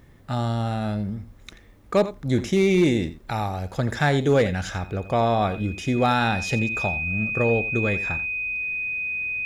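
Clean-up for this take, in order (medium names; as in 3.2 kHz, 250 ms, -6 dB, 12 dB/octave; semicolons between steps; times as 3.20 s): clip repair -12 dBFS; band-stop 2.5 kHz, Q 30; inverse comb 86 ms -15 dB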